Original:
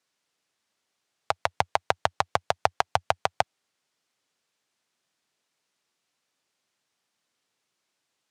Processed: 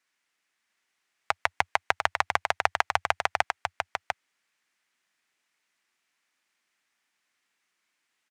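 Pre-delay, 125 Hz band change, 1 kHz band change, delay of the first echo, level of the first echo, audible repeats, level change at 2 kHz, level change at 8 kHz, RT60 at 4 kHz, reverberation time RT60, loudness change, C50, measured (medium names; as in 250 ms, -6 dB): no reverb, -7.0 dB, -0.5 dB, 698 ms, -5.5 dB, 1, +5.5 dB, -0.5 dB, no reverb, no reverb, -0.5 dB, no reverb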